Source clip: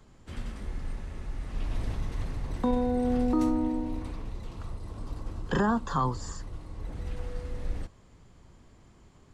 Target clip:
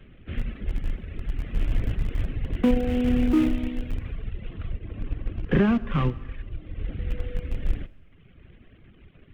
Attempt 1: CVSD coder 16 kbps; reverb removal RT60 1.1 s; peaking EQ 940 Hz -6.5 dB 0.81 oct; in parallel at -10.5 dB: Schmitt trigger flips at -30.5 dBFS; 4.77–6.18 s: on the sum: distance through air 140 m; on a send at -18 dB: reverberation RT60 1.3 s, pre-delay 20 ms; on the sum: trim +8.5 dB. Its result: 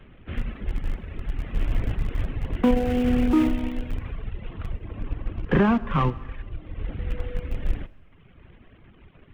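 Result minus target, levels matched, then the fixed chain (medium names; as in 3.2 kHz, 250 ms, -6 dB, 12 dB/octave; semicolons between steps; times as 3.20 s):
1 kHz band +6.0 dB
CVSD coder 16 kbps; reverb removal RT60 1.1 s; peaking EQ 940 Hz -17 dB 0.81 oct; in parallel at -10.5 dB: Schmitt trigger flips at -30.5 dBFS; 4.77–6.18 s: on the sum: distance through air 140 m; on a send at -18 dB: reverberation RT60 1.3 s, pre-delay 20 ms; on the sum: trim +8.5 dB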